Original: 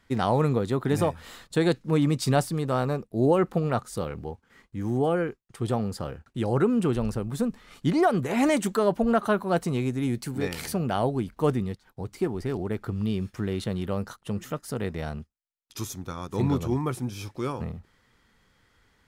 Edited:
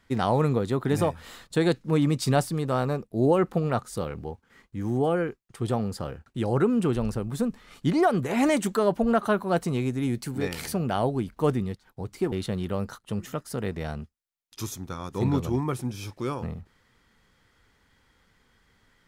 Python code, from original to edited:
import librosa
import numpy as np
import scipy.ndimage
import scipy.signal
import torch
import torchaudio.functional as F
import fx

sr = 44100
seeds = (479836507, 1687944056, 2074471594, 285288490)

y = fx.edit(x, sr, fx.cut(start_s=12.32, length_s=1.18), tone=tone)